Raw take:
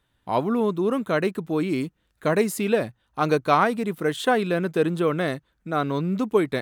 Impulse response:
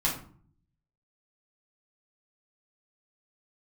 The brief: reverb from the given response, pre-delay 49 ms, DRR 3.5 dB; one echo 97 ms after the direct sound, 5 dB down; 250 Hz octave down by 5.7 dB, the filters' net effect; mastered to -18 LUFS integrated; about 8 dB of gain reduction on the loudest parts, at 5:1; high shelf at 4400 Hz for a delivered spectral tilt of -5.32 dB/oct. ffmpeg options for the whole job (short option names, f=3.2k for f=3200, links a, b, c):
-filter_complex "[0:a]equalizer=f=250:t=o:g=-8,highshelf=f=4.4k:g=-4.5,acompressor=threshold=-25dB:ratio=5,aecho=1:1:97:0.562,asplit=2[a][b];[1:a]atrim=start_sample=2205,adelay=49[c];[b][c]afir=irnorm=-1:irlink=0,volume=-12dB[d];[a][d]amix=inputs=2:normalize=0,volume=10dB"